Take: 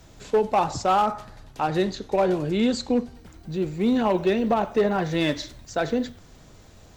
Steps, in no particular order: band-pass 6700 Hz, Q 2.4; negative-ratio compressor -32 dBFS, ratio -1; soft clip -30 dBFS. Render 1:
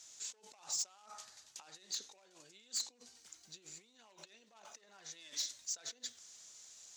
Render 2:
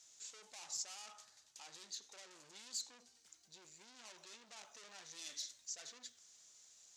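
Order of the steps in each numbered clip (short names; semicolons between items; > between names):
negative-ratio compressor > band-pass > soft clip; soft clip > negative-ratio compressor > band-pass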